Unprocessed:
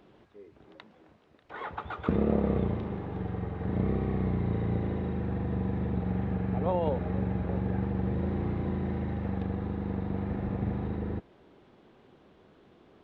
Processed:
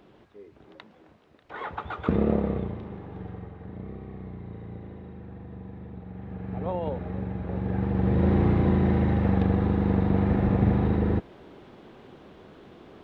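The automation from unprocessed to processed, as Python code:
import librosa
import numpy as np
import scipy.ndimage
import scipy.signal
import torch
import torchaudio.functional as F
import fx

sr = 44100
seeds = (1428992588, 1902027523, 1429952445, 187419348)

y = fx.gain(x, sr, db=fx.line((2.29, 3.0), (2.73, -4.0), (3.29, -4.0), (3.79, -10.5), (6.12, -10.5), (6.62, -2.0), (7.39, -2.0), (8.3, 9.5)))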